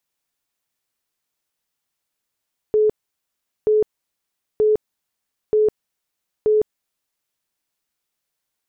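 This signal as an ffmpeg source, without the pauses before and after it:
-f lavfi -i "aevalsrc='0.237*sin(2*PI*428*mod(t,0.93))*lt(mod(t,0.93),67/428)':d=4.65:s=44100"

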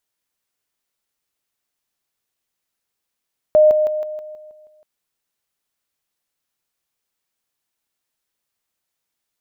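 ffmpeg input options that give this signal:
-f lavfi -i "aevalsrc='pow(10,(-7.5-6*floor(t/0.16))/20)*sin(2*PI*613*t)':d=1.28:s=44100"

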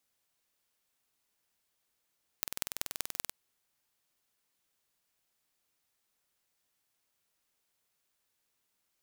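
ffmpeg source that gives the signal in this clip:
-f lavfi -i "aevalsrc='0.631*eq(mod(n,2120),0)*(0.5+0.5*eq(mod(n,8480),0))':d=0.88:s=44100"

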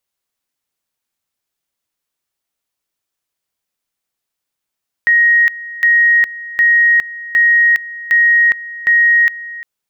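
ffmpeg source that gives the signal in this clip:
-f lavfi -i "aevalsrc='pow(10,(-7-18*gte(mod(t,0.76),0.41))/20)*sin(2*PI*1880*t)':d=4.56:s=44100"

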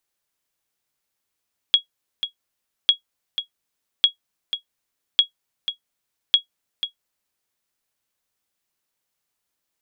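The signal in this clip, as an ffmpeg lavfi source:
-f lavfi -i "aevalsrc='0.562*(sin(2*PI*3320*mod(t,1.15))*exp(-6.91*mod(t,1.15)/0.11)+0.299*sin(2*PI*3320*max(mod(t,1.15)-0.49,0))*exp(-6.91*max(mod(t,1.15)-0.49,0)/0.11))':d=5.75:s=44100"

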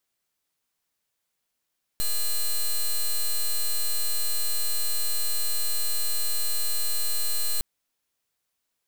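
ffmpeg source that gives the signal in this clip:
-f lavfi -i "aevalsrc='0.0668*(2*lt(mod(4120*t,1),0.08)-1)':d=5.61:s=44100"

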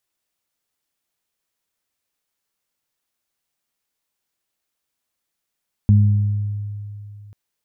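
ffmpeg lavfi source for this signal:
-f lavfi -i "aevalsrc='0.376*pow(10,-3*t/2.78)*sin(2*PI*103*t)+0.168*pow(10,-3*t/1.18)*sin(2*PI*206*t)':d=1.44:s=44100"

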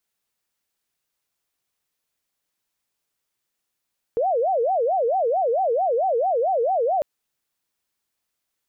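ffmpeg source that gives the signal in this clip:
-f lavfi -i "aevalsrc='0.126*sin(2*PI*(614.5*t-161.5/(2*PI*4.5)*sin(2*PI*4.5*t)))':d=2.85:s=44100"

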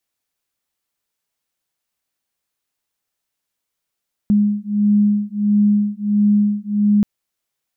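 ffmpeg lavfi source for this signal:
-f lavfi -i "aevalsrc='0.158*(sin(2*PI*206*t)+sin(2*PI*207.5*t))':d=2.73:s=44100"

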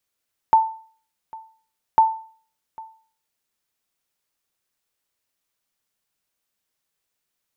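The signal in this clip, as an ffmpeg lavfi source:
-f lavfi -i "aevalsrc='0.447*(sin(2*PI*889*mod(t,1.45))*exp(-6.91*mod(t,1.45)/0.45)+0.0708*sin(2*PI*889*max(mod(t,1.45)-0.8,0))*exp(-6.91*max(mod(t,1.45)-0.8,0)/0.45))':d=2.9:s=44100"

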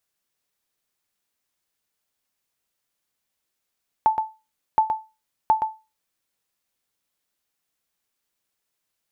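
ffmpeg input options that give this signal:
-f lavfi -i "aevalsrc='0.335*(sin(2*PI*876*mod(t,0.72))*exp(-6.91*mod(t,0.72)/0.27)+0.447*sin(2*PI*876*max(mod(t,0.72)-0.12,0))*exp(-6.91*max(mod(t,0.72)-0.12,0)/0.27))':d=2.16:s=44100"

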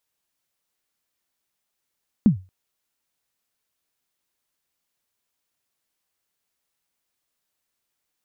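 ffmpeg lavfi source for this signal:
-f lavfi -i "aevalsrc='0.447*pow(10,-3*t/0.28)*sin(2*PI*(240*0.111/log(93/240)*(exp(log(93/240)*min(t,0.111)/0.111)-1)+93*max(t-0.111,0)))':d=0.23:s=44100"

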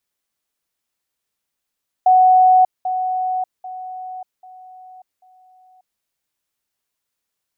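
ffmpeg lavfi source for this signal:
-f lavfi -i "aevalsrc='pow(10,(-8-10*floor(t/0.79))/20)*sin(2*PI*742*t)*clip(min(mod(t,0.79),0.59-mod(t,0.79))/0.005,0,1)':d=3.95:s=44100"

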